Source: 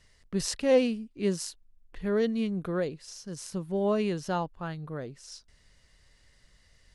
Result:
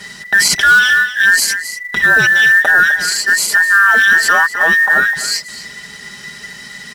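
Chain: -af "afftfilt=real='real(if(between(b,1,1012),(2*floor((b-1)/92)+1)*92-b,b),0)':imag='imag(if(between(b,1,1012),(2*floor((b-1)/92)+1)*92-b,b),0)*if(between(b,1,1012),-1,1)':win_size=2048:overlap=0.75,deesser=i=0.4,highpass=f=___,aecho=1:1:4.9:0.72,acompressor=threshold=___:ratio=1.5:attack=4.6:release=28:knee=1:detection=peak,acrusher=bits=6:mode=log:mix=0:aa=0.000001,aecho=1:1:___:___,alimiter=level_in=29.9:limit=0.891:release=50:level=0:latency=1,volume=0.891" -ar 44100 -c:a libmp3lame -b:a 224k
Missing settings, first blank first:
70, 0.00398, 255, 0.178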